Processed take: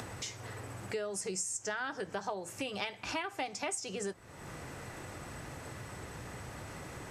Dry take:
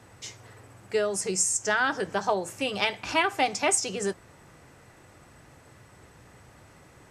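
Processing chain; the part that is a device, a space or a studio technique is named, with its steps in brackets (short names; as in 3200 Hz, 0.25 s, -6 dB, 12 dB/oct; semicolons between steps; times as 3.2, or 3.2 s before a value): upward and downward compression (upward compressor, threshold -28 dBFS; compressor 4:1, threshold -30 dBFS, peak gain reduction 10 dB); gain -4.5 dB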